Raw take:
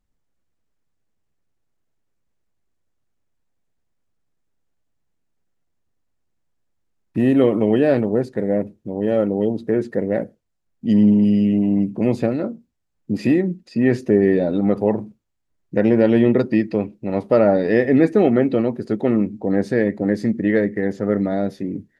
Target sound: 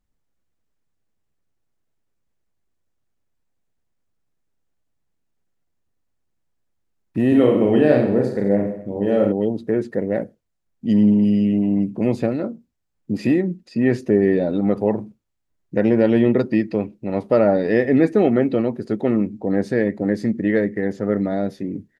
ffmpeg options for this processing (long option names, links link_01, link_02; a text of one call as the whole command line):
ffmpeg -i in.wav -filter_complex "[0:a]asplit=3[link_01][link_02][link_03];[link_01]afade=type=out:start_time=7.31:duration=0.02[link_04];[link_02]aecho=1:1:40|86|138.9|199.7|269.7:0.631|0.398|0.251|0.158|0.1,afade=type=in:start_time=7.31:duration=0.02,afade=type=out:start_time=9.31:duration=0.02[link_05];[link_03]afade=type=in:start_time=9.31:duration=0.02[link_06];[link_04][link_05][link_06]amix=inputs=3:normalize=0,volume=-1dB" out.wav